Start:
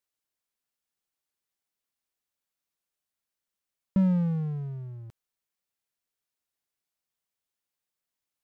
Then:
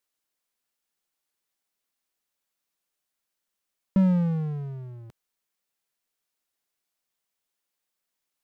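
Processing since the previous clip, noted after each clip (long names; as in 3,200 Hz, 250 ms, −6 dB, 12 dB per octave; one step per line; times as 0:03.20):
parametric band 85 Hz −8 dB 1.4 octaves
level +4.5 dB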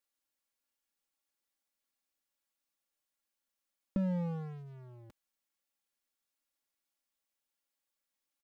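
comb filter 3.6 ms, depth 59%
downward compressor 4 to 1, threshold −24 dBFS, peak gain reduction 5.5 dB
level −6.5 dB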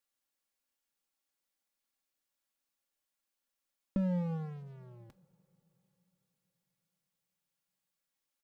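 coupled-rooms reverb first 0.33 s, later 4.3 s, from −20 dB, DRR 14.5 dB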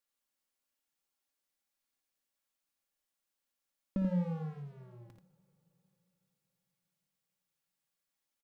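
multi-tap delay 57/84 ms −10.5/−5 dB
level −2 dB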